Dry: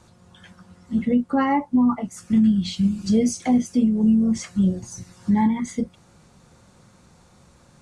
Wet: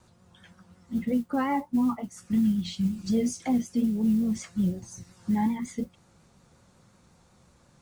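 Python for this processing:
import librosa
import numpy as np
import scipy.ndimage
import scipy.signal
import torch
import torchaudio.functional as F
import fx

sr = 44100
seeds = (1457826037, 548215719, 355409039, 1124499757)

y = fx.vibrato(x, sr, rate_hz=5.5, depth_cents=61.0)
y = fx.mod_noise(y, sr, seeds[0], snr_db=31)
y = y * librosa.db_to_amplitude(-6.5)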